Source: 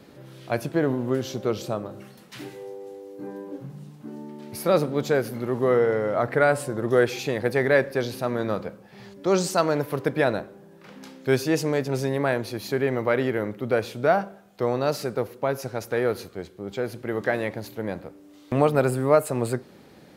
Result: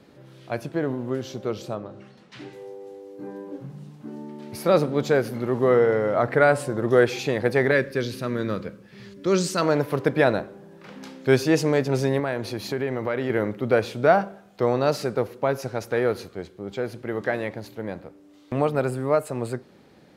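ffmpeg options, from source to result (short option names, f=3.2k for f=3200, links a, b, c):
-filter_complex "[0:a]asettb=1/sr,asplit=3[a][b][c];[a]atrim=end=1.754[d];[b]atrim=start=1.75:end=2.53,asetpts=PTS-STARTPTS,afade=t=in:d=0.004:c=qsin,afade=t=out:st=0.776:d=0.004:c=qsin,lowpass=5.7k[e];[c]atrim=start=2.526[f];[d][e]acrossfade=d=0.004:c1=hsin:c2=qsin[g];[g][f]acrossfade=d=0.004:c1=qsin:c2=hsin,asettb=1/sr,asplit=3[h][i][j];[h]atrim=end=7.714[k];[i]atrim=start=7.71:end=9.62,asetpts=PTS-STARTPTS,afade=t=in:d=0.004:c=qsin,afade=t=out:st=1.906:d=0.004:c=qsin,equalizer=f=770:t=o:w=0.72:g=-14.5[l];[j]atrim=start=9.616[m];[k][l]acrossfade=d=0.004:c1=hsin:c2=qsin[n];[n][m]acrossfade=d=0.004:c1=qsin:c2=hsin,asettb=1/sr,asplit=3[o][p][q];[o]atrim=end=12.194[r];[p]atrim=start=12.19:end=13.3,asetpts=PTS-STARTPTS,afade=t=in:d=0.004:c=qsin,afade=t=out:st=1.106:d=0.004:c=qsin,acompressor=threshold=-27dB:ratio=2.5:attack=3.2:release=140:knee=1:detection=peak[s];[q]atrim=start=13.296[t];[r][s]acrossfade=d=0.004:c1=hsin:c2=qsin[u];[u][t]acrossfade=d=0.004:c1=qsin:c2=hsin,highshelf=f=11k:g=-10.5,dynaudnorm=f=220:g=31:m=11.5dB,volume=-3dB"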